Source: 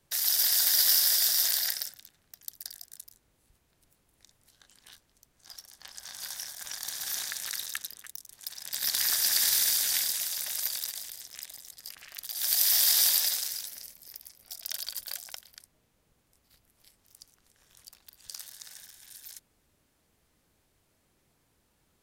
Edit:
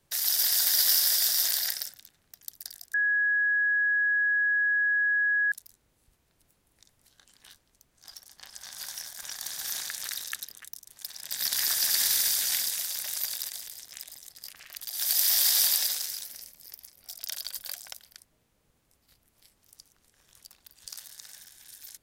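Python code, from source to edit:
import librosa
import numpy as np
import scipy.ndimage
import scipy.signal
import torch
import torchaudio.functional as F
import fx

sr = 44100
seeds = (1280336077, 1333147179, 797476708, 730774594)

y = fx.edit(x, sr, fx.insert_tone(at_s=2.94, length_s=2.58, hz=1670.0, db=-22.0), tone=tone)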